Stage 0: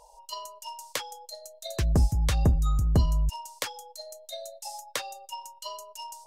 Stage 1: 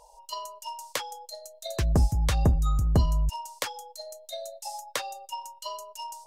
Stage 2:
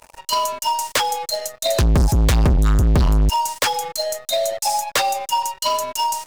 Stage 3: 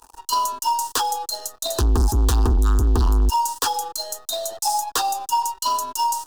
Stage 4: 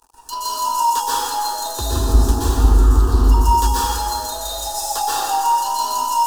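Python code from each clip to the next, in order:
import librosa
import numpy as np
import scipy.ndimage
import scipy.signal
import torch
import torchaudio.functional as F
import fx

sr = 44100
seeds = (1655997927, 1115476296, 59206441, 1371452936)

y1 = fx.dynamic_eq(x, sr, hz=850.0, q=0.82, threshold_db=-46.0, ratio=4.0, max_db=3)
y2 = fx.leveller(y1, sr, passes=5)
y3 = fx.fixed_phaser(y2, sr, hz=580.0, stages=6)
y4 = fx.rev_plate(y3, sr, seeds[0], rt60_s=2.5, hf_ratio=0.65, predelay_ms=110, drr_db=-9.5)
y4 = F.gain(torch.from_numpy(y4), -7.0).numpy()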